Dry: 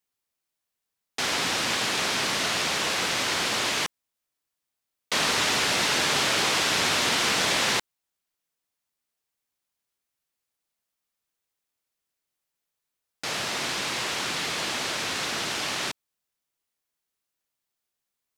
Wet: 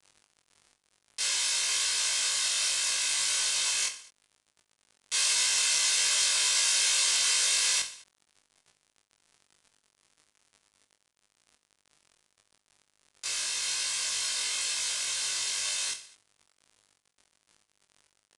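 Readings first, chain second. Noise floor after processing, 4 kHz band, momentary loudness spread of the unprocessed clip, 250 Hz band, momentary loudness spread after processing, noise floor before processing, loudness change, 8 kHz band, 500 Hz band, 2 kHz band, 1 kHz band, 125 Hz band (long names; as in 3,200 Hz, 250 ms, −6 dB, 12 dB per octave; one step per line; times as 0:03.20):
−78 dBFS, −2.0 dB, 7 LU, below −25 dB, 8 LU, −84 dBFS, −1.0 dB, +4.5 dB, −18.0 dB, −7.0 dB, −14.0 dB, below −20 dB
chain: lower of the sound and its delayed copy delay 1.9 ms
high-pass filter 340 Hz 12 dB per octave
first difference
reversed playback
upward compression, threshold −49 dBFS
reversed playback
surface crackle 59 per second −47 dBFS
bit reduction 8 bits
double-tracking delay 20 ms −3 dB
reverse bouncing-ball delay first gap 20 ms, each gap 1.4×, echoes 5
downsampling to 22,050 Hz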